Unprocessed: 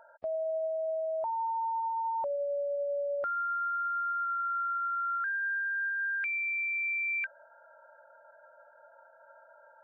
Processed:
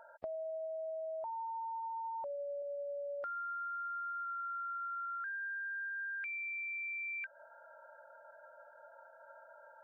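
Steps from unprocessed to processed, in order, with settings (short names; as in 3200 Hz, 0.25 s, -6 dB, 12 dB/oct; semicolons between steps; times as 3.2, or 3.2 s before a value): 2.62–5.06 tilt +2 dB/oct; compressor 6:1, threshold -40 dBFS, peak gain reduction 9.5 dB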